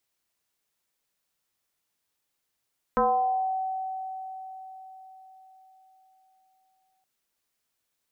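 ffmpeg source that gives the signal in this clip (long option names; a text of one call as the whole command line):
ffmpeg -f lavfi -i "aevalsrc='0.119*pow(10,-3*t/4.68)*sin(2*PI*758*t+2.2*pow(10,-3*t/0.84)*sin(2*PI*0.35*758*t))':duration=4.07:sample_rate=44100" out.wav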